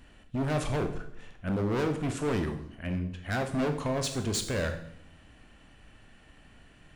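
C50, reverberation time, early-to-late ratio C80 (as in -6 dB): 9.5 dB, 0.70 s, 13.0 dB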